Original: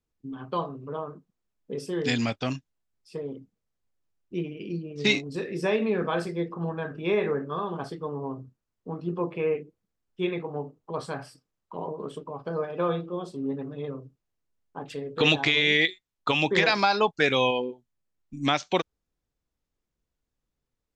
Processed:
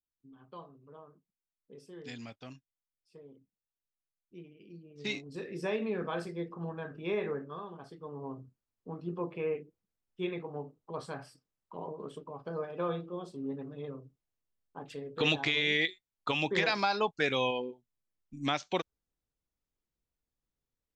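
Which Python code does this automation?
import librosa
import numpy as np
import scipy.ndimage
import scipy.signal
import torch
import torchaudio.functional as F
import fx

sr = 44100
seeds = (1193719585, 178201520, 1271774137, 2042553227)

y = fx.gain(x, sr, db=fx.line((4.7, -18.5), (5.46, -8.0), (7.33, -8.0), (7.81, -15.0), (8.3, -7.0)))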